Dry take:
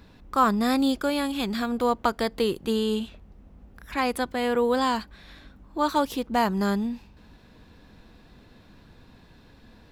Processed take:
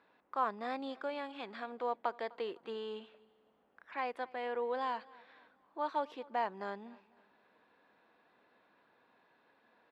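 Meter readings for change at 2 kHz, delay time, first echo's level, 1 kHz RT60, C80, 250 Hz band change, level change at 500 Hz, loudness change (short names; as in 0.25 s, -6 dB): -12.0 dB, 0.253 s, -23.0 dB, none, none, -22.5 dB, -12.5 dB, -13.5 dB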